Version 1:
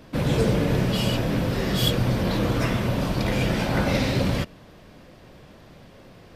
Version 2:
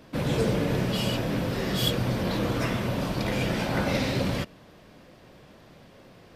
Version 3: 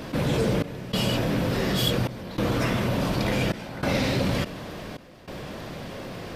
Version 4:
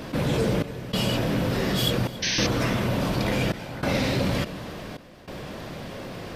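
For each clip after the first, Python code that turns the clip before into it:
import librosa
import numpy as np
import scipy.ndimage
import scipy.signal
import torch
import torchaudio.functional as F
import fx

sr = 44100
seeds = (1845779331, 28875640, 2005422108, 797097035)

y1 = fx.low_shelf(x, sr, hz=89.0, db=-7.0)
y1 = F.gain(torch.from_numpy(y1), -2.5).numpy()
y2 = fx.step_gate(y1, sr, bpm=145, pattern='xxxxxx...xxxxx', floor_db=-24.0, edge_ms=4.5)
y2 = fx.env_flatten(y2, sr, amount_pct=50)
y3 = fx.spec_paint(y2, sr, seeds[0], shape='noise', start_s=2.22, length_s=0.25, low_hz=1500.0, high_hz=6400.0, level_db=-26.0)
y3 = y3 + 10.0 ** (-19.0 / 20.0) * np.pad(y3, (int(282 * sr / 1000.0), 0))[:len(y3)]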